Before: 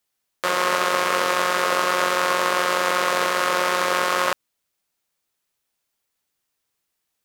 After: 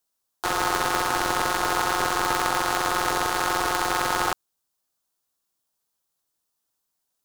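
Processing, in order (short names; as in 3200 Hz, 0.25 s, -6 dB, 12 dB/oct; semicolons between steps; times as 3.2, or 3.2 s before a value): fixed phaser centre 880 Hz, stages 4; polarity switched at an audio rate 190 Hz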